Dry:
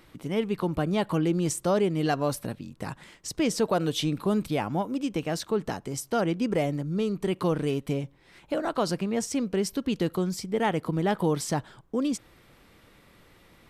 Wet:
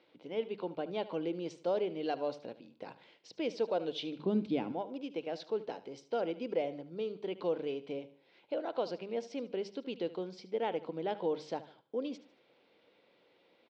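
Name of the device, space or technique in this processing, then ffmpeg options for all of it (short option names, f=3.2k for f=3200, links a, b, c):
phone earpiece: -filter_complex "[0:a]lowpass=6.6k,bandreject=f=50:t=h:w=6,bandreject=f=100:t=h:w=6,bandreject=f=150:t=h:w=6,bandreject=f=200:t=h:w=6,asettb=1/sr,asplit=3[a][b][c];[a]atrim=end=4.194[d];[b]atrim=start=4.19:end=4.72,asetpts=PTS-STARTPTS,afade=t=in:d=0.004:c=qsin,afade=t=out:st=0.526:d=0.004:c=qsin,lowshelf=f=380:t=q:w=1.5:g=10[e];[c]atrim=start=4.716[f];[d][e]acrossfade=d=0.004:c1=hsin:c2=qsin[g];[g][f]acrossfade=d=0.004:c1=qsin:c2=hsin,highpass=340,equalizer=f=500:t=q:w=4:g=6,equalizer=f=1.2k:t=q:w=4:g=-10,equalizer=f=1.8k:t=q:w=4:g=-8,lowpass=f=4.4k:w=0.5412,lowpass=f=4.4k:w=1.3066,aecho=1:1:75|150|225:0.158|0.0586|0.0217,volume=-8dB"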